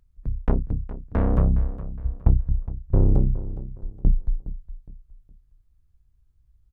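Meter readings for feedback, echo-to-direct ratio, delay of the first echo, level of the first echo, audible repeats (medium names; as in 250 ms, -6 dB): 32%, -14.0 dB, 414 ms, -14.5 dB, 3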